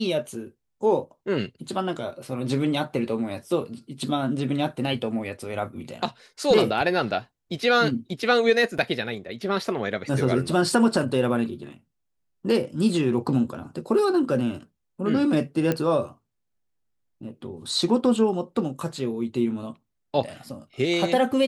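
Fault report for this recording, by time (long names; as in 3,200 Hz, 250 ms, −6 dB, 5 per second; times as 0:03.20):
0:08.78–0:08.79: drop-out 5.7 ms
0:15.72: click −11 dBFS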